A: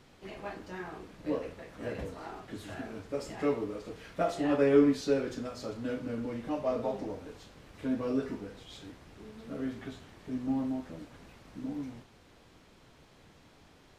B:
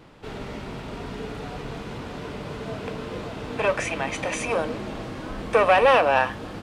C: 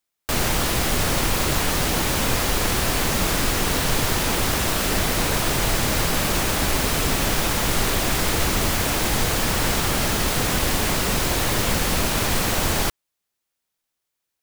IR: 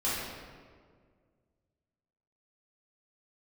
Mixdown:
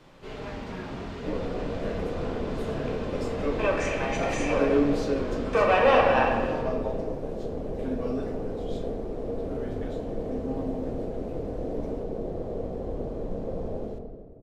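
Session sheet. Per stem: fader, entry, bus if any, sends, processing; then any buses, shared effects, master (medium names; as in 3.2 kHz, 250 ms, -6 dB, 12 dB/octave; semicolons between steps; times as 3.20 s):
-2.5 dB, 0.00 s, send -16 dB, none
-10.0 dB, 0.00 s, send -4 dB, steep low-pass 7.9 kHz
-16.0 dB, 0.95 s, send -5.5 dB, resonant low-pass 470 Hz, resonance Q 4.9; AM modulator 200 Hz, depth 70%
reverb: on, RT60 1.9 s, pre-delay 3 ms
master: none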